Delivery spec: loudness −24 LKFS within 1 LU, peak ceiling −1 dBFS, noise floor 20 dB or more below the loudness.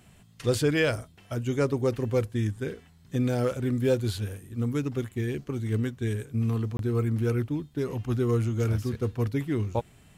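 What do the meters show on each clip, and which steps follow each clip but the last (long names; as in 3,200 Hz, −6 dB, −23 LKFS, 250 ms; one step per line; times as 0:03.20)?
number of dropouts 1; longest dropout 22 ms; integrated loudness −28.5 LKFS; sample peak −12.0 dBFS; target loudness −24.0 LKFS
→ repair the gap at 0:06.77, 22 ms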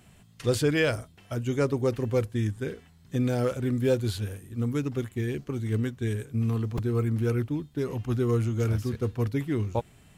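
number of dropouts 0; integrated loudness −28.5 LKFS; sample peak −12.0 dBFS; target loudness −24.0 LKFS
→ level +4.5 dB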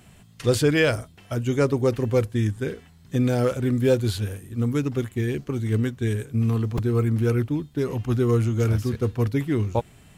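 integrated loudness −24.0 LKFS; sample peak −7.5 dBFS; background noise floor −52 dBFS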